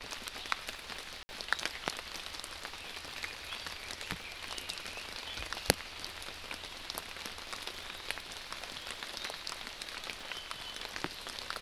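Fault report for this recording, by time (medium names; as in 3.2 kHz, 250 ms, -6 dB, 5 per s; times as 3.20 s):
crackle 30 per s -45 dBFS
1.23–1.29 s: dropout 60 ms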